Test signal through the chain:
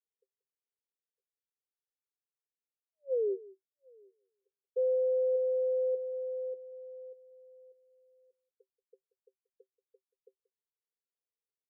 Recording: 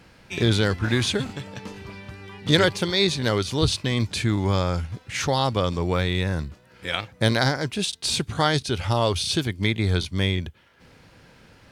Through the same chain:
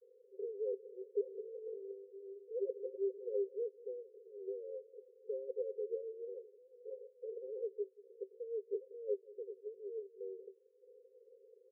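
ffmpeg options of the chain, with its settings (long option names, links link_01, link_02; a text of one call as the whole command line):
ffmpeg -i in.wav -af "areverse,acompressor=threshold=-26dB:ratio=6,areverse,asoftclip=type=tanh:threshold=-22dB,asuperpass=centerf=450:order=20:qfactor=3.1,aecho=1:1:182:0.1" out.wav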